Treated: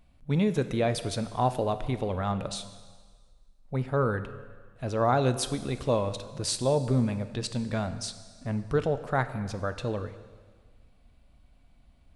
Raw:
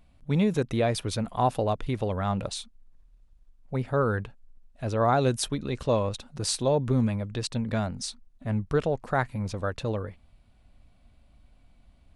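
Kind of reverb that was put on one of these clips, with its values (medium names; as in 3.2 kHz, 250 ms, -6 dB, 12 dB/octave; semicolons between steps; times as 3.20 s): plate-style reverb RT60 1.6 s, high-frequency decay 1×, DRR 10.5 dB; trim -1.5 dB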